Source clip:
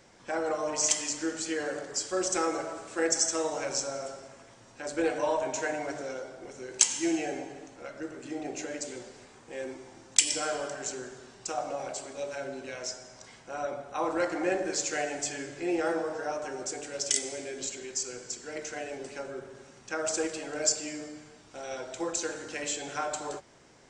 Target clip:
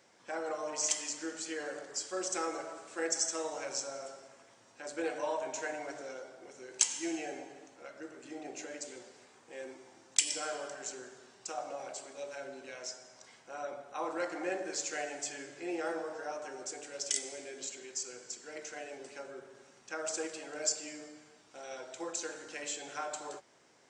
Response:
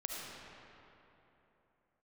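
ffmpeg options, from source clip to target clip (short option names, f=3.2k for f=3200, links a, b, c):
-af "highpass=f=330:p=1,volume=-5.5dB"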